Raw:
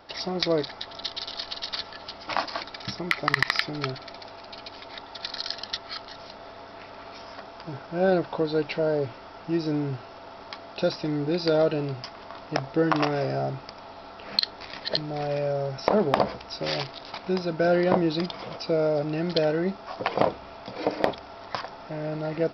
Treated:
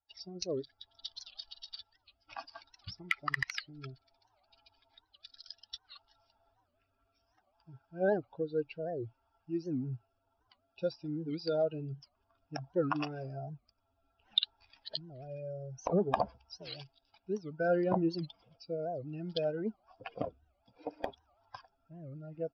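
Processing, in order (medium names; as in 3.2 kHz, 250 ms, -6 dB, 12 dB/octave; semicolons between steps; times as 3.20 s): expander on every frequency bin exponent 2; rotary cabinet horn 0.6 Hz; warped record 78 rpm, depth 250 cents; trim -3.5 dB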